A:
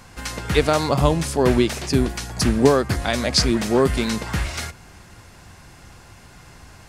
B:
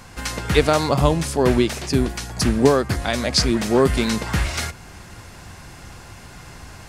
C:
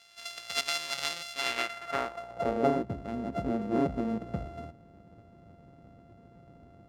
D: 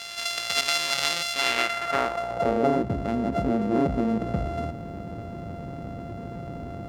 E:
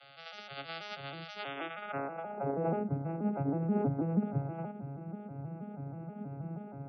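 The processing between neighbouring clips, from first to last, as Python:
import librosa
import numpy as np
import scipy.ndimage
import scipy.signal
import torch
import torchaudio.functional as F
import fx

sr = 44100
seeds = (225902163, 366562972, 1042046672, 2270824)

y1 = fx.rider(x, sr, range_db=5, speed_s=2.0)
y2 = np.r_[np.sort(y1[:len(y1) // 64 * 64].reshape(-1, 64), axis=1).ravel(), y1[len(y1) // 64 * 64:]]
y2 = fx.filter_sweep_bandpass(y2, sr, from_hz=4100.0, to_hz=260.0, start_s=1.31, end_s=2.86, q=1.2)
y2 = F.gain(torch.from_numpy(y2), -5.5).numpy()
y3 = fx.env_flatten(y2, sr, amount_pct=50)
y3 = F.gain(torch.from_numpy(y3), 2.5).numpy()
y4 = fx.vocoder_arp(y3, sr, chord='minor triad', root=49, every_ms=160)
y4 = fx.spec_topn(y4, sr, count=64)
y4 = F.gain(torch.from_numpy(y4), -8.5).numpy()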